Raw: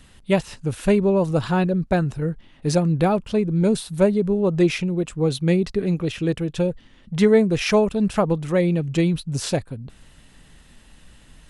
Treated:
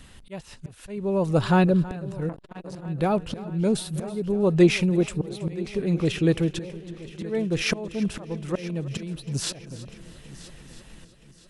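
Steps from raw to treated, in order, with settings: slow attack 612 ms; multi-head delay 324 ms, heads first and third, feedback 54%, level -18 dB; 2.29–2.86 s: transformer saturation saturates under 720 Hz; trim +1.5 dB

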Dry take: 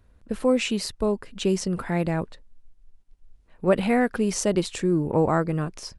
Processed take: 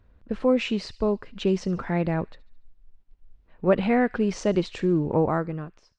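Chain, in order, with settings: fade out at the end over 0.86 s; Gaussian low-pass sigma 1.8 samples; feedback echo behind a high-pass 71 ms, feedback 51%, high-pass 2.4 kHz, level -18 dB

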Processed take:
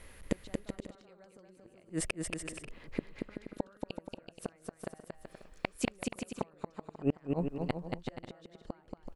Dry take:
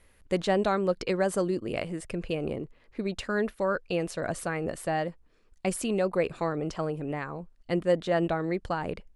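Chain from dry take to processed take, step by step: 4.82–5.85 s: bass shelf 320 Hz -6 dB; inverted gate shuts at -24 dBFS, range -41 dB; bouncing-ball echo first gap 230 ms, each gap 0.65×, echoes 5; trim +8 dB

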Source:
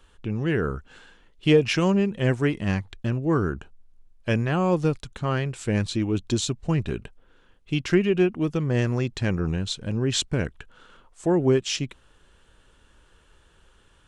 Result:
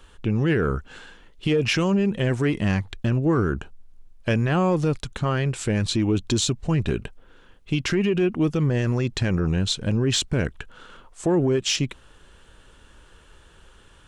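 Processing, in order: in parallel at -8.5 dB: saturation -21 dBFS, distortion -10 dB; on the sum: peak limiter -17 dBFS, peak gain reduction 10 dB; trim +3.5 dB

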